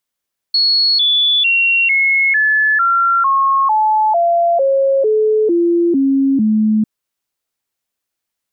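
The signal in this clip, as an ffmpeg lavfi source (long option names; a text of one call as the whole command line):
ffmpeg -f lavfi -i "aevalsrc='0.316*clip(min(mod(t,0.45),0.45-mod(t,0.45))/0.005,0,1)*sin(2*PI*4350*pow(2,-floor(t/0.45)/3)*mod(t,0.45))':duration=6.3:sample_rate=44100" out.wav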